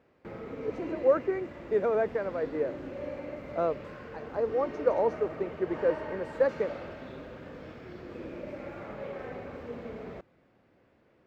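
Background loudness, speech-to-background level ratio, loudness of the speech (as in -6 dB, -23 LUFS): -41.0 LUFS, 10.5 dB, -30.5 LUFS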